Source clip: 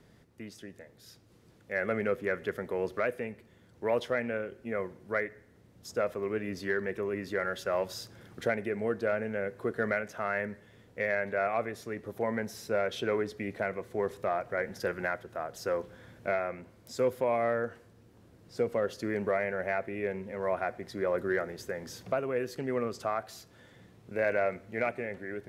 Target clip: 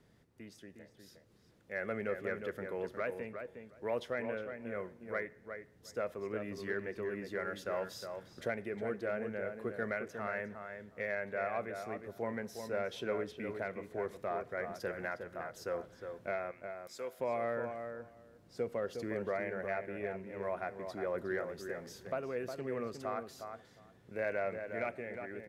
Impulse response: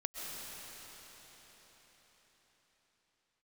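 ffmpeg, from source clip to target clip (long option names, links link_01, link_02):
-filter_complex "[0:a]asettb=1/sr,asplit=3[link_01][link_02][link_03];[link_01]atrim=end=16.514[link_04];[link_02]atrim=start=16.51:end=17.2,asetpts=PTS-STARTPTS,afade=type=in:duration=0.004:curve=qsin,afade=type=out:start_time=0.686:duration=0.004:curve=qsin,highpass=frequency=1000:poles=1[link_05];[link_03]atrim=start=17.196[link_06];[link_04][link_05]acrossfade=duration=0.004:curve1=hsin:curve2=qsin[link_07];[link_07][link_06]acrossfade=duration=0.004:curve1=qsin:curve2=hsin,asplit=2[link_08][link_09];[link_09]adelay=360,lowpass=frequency=2100:poles=1,volume=-6.5dB,asplit=2[link_10][link_11];[link_11]adelay=360,lowpass=frequency=2100:poles=1,volume=0.15,asplit=2[link_12][link_13];[link_13]adelay=360,lowpass=frequency=2100:poles=1,volume=0.15[link_14];[link_08][link_10][link_12][link_14]amix=inputs=4:normalize=0,volume=-7dB"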